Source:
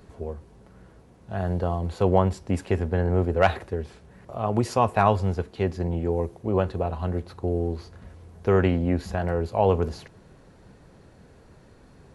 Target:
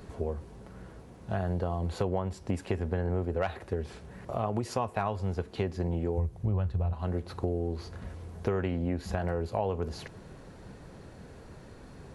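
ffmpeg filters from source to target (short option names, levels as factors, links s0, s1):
-filter_complex "[0:a]asplit=3[s0][s1][s2];[s0]afade=t=out:st=6.17:d=0.02[s3];[s1]asubboost=boost=8:cutoff=120,afade=t=in:st=6.17:d=0.02,afade=t=out:st=6.92:d=0.02[s4];[s2]afade=t=in:st=6.92:d=0.02[s5];[s3][s4][s5]amix=inputs=3:normalize=0,acompressor=threshold=0.0282:ratio=6,volume=1.5"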